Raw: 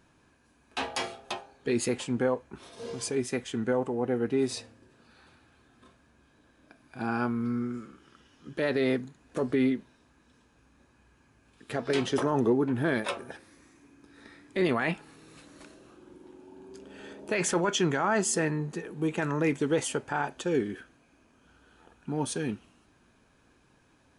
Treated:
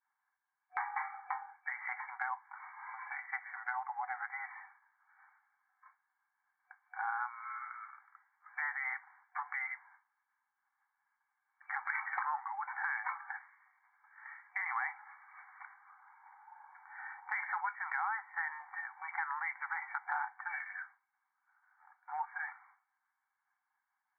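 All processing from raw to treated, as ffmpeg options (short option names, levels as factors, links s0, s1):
-filter_complex "[0:a]asettb=1/sr,asplit=3[s0][s1][s2];[s0]atrim=end=11.864[s3];[s1]atrim=start=11.86:end=12.49,asetpts=PTS-STARTPTS,afade=t=in:d=0.004:c=qsin,afade=t=out:st=0.626:d=0.004:c=qsin,equalizer=f=670:w=0.81:g=-4.5,acontrast=52[s4];[s2]atrim=start=12.486[s5];[s3][s4]acrossfade=d=0.004:c1=hsin:c2=qsin[s6];[s6][s5]acrossfade=d=0.004:c1=qsin:c2=hsin,agate=range=0.0224:threshold=0.00316:ratio=3:detection=peak,afftfilt=real='re*between(b*sr/4096,740,2300)':imag='im*between(b*sr/4096,740,2300)':win_size=4096:overlap=0.75,acompressor=threshold=0.00891:ratio=4,volume=2"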